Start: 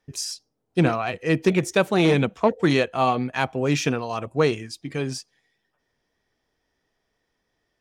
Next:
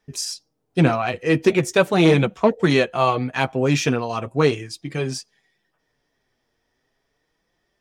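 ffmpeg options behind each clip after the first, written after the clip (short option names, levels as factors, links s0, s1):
-af "flanger=delay=4.6:depth=4.1:regen=-37:speed=0.38:shape=triangular,volume=2.11"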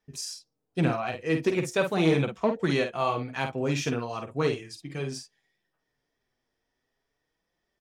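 -filter_complex "[0:a]asplit=2[s0][s1];[s1]adelay=50,volume=0.447[s2];[s0][s2]amix=inputs=2:normalize=0,volume=0.355"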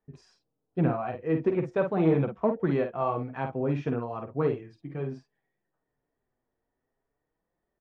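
-af "lowpass=1200"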